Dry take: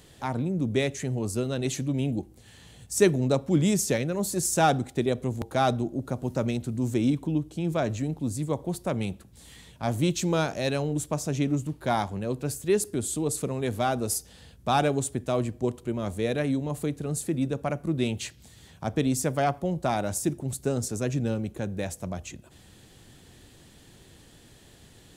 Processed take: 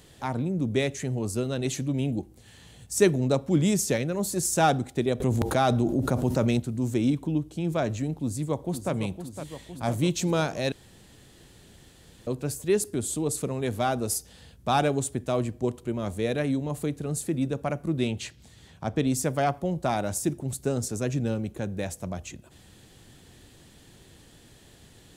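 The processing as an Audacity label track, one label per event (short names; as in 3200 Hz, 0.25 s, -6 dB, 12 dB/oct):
5.200000	6.600000	fast leveller amount 70%
8.200000	8.920000	echo throw 0.51 s, feedback 70%, level -9.5 dB
10.720000	12.270000	room tone
18.050000	19.070000	high shelf 9600 Hz -9.5 dB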